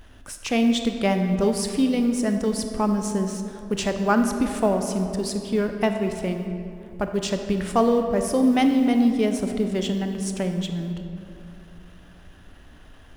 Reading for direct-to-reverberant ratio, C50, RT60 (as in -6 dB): 5.5 dB, 6.5 dB, 2.7 s